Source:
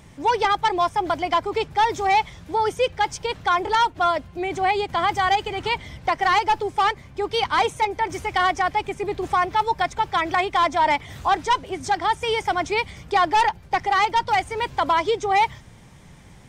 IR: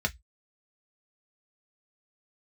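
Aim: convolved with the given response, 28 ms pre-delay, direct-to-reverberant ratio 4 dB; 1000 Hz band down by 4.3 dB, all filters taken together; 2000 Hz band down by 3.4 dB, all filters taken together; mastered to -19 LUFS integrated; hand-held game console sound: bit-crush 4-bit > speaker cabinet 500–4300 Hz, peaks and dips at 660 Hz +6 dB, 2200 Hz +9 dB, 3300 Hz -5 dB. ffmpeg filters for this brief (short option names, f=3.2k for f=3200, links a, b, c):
-filter_complex "[0:a]equalizer=f=1k:t=o:g=-5.5,equalizer=f=2k:t=o:g=-8,asplit=2[a][b];[1:a]atrim=start_sample=2205,adelay=28[c];[b][c]afir=irnorm=-1:irlink=0,volume=-11.5dB[d];[a][d]amix=inputs=2:normalize=0,acrusher=bits=3:mix=0:aa=0.000001,highpass=500,equalizer=f=660:t=q:w=4:g=6,equalizer=f=2.2k:t=q:w=4:g=9,equalizer=f=3.3k:t=q:w=4:g=-5,lowpass=f=4.3k:w=0.5412,lowpass=f=4.3k:w=1.3066,volume=4.5dB"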